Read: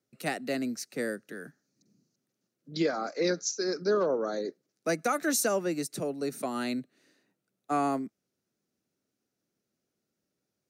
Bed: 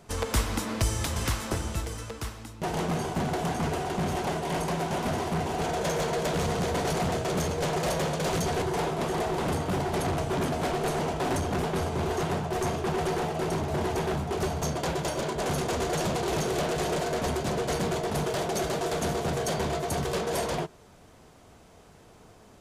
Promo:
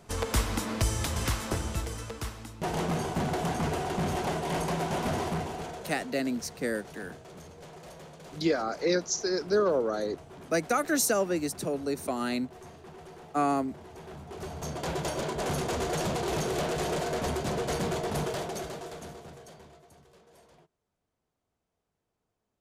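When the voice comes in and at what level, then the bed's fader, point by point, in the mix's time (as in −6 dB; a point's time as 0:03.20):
5.65 s, +1.5 dB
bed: 0:05.27 −1 dB
0:06.15 −19.5 dB
0:13.86 −19.5 dB
0:14.97 −2 dB
0:18.23 −2 dB
0:20.05 −29.5 dB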